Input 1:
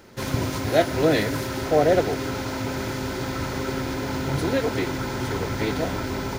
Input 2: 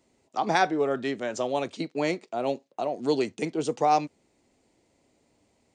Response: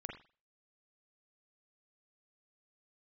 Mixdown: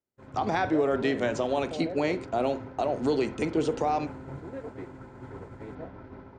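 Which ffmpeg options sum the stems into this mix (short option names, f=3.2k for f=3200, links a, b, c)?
-filter_complex "[0:a]flanger=delay=7.4:depth=7.6:regen=-88:speed=0.36:shape=sinusoidal,lowpass=1.4k,alimiter=limit=-21dB:level=0:latency=1:release=165,volume=-7dB[a];[1:a]acrossover=split=4000[b][c];[c]acompressor=threshold=-47dB:ratio=4:attack=1:release=60[d];[b][d]amix=inputs=2:normalize=0,alimiter=limit=-21dB:level=0:latency=1:release=120,volume=2dB,asplit=2[e][f];[f]volume=-6.5dB[g];[2:a]atrim=start_sample=2205[h];[g][h]afir=irnorm=-1:irlink=0[i];[a][e][i]amix=inputs=3:normalize=0,agate=range=-33dB:threshold=-34dB:ratio=3:detection=peak"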